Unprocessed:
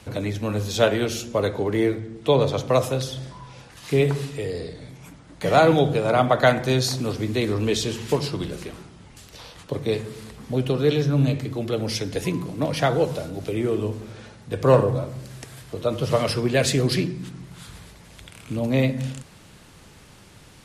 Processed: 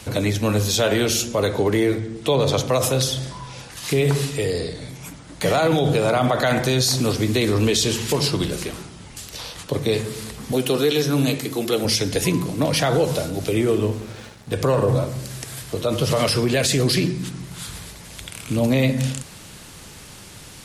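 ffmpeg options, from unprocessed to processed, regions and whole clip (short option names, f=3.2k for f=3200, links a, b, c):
-filter_complex "[0:a]asettb=1/sr,asplit=3[a][b][c];[a]atrim=end=10.524[d];[b]atrim=start=10.52:end=11.85,asetpts=PTS-STARTPTS,afade=t=in:d=0.004:c=qsin,afade=t=out:st=1.326:d=0.004:c=qsin,highpass=220,highshelf=f=8.9k:g=10.5,bandreject=f=590:w=16[e];[c]atrim=start=11.846[f];[d][e]acrossfade=d=0.004:c1=hsin:c2=qsin[g];[g][f]acrossfade=d=0.004:c1=qsin:c2=hsin,asettb=1/sr,asplit=3[h][i][j];[h]atrim=end=13.784[k];[i]atrim=start=13.78:end=14.53,asetpts=PTS-STARTPTS,afade=t=in:d=0.004:c=qsin,afade=t=out:st=0.746:d=0.004:c=qsin,bass=f=250:g=0,treble=f=4k:g=-4,aeval=exprs='sgn(val(0))*max(abs(val(0))-0.00316,0)':c=same[l];[j]atrim=start=14.526[m];[k][l]acrossfade=d=0.004:c1=hsin:c2=qsin[n];[n][m]acrossfade=d=0.004:c1=qsin:c2=hsin,highshelf=f=3.8k:g=8.5,alimiter=level_in=14.5dB:limit=-1dB:release=50:level=0:latency=1,volume=-9dB"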